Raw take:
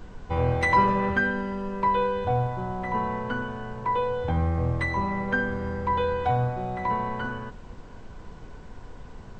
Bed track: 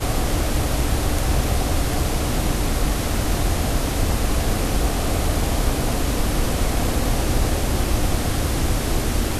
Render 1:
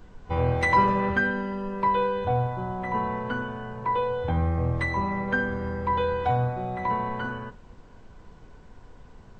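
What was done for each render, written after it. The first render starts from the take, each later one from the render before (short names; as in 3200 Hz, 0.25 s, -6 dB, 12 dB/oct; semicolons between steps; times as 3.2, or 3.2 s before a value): noise print and reduce 6 dB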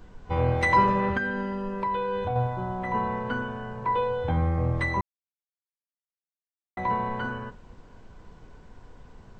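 1.17–2.36 compressor, threshold -24 dBFS; 5.01–6.77 mute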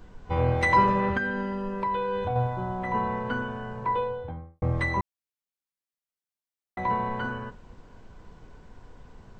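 3.78–4.62 studio fade out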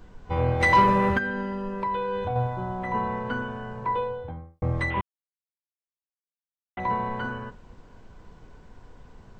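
0.6–1.19 sample leveller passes 1; 4.9–6.8 CVSD 16 kbps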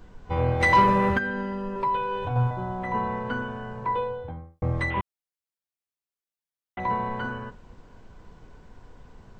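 1.75–2.51 comb 7.3 ms, depth 80%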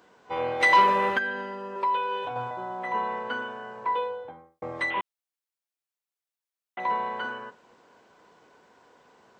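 HPF 410 Hz 12 dB/oct; dynamic EQ 3200 Hz, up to +5 dB, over -47 dBFS, Q 1.7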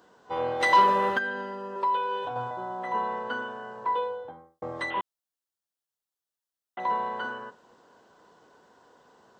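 bell 2300 Hz -10.5 dB 0.39 oct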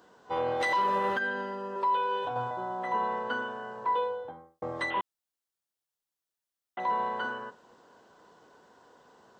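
limiter -20.5 dBFS, peak gain reduction 10.5 dB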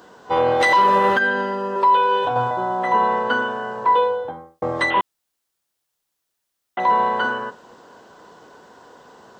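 gain +12 dB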